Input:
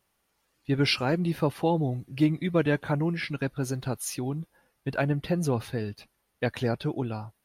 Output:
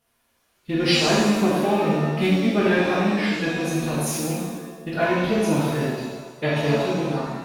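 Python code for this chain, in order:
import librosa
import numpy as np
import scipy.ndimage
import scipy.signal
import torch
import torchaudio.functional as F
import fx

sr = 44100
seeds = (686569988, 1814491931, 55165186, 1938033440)

y = fx.rattle_buzz(x, sr, strikes_db=-27.0, level_db=-33.0)
y = fx.pitch_keep_formants(y, sr, semitones=3.5)
y = fx.rev_shimmer(y, sr, seeds[0], rt60_s=1.2, semitones=7, shimmer_db=-8, drr_db=-6.5)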